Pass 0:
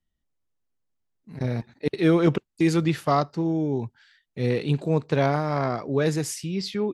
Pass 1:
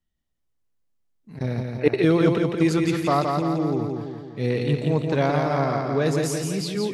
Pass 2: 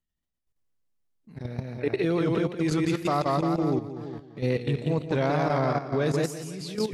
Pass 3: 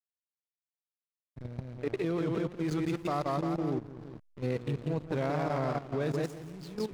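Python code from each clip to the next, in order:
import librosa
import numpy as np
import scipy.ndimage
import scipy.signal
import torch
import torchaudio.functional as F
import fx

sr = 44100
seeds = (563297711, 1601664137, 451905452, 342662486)

y1 = fx.echo_feedback(x, sr, ms=170, feedback_pct=55, wet_db=-4.0)
y1 = fx.spec_box(y1, sr, start_s=1.79, length_s=0.22, low_hz=290.0, high_hz=3000.0, gain_db=8)
y2 = fx.level_steps(y1, sr, step_db=12)
y2 = fx.wow_flutter(y2, sr, seeds[0], rate_hz=2.1, depth_cents=55.0)
y3 = fx.backlash(y2, sr, play_db=-32.0)
y3 = y3 * 10.0 ** (-6.0 / 20.0)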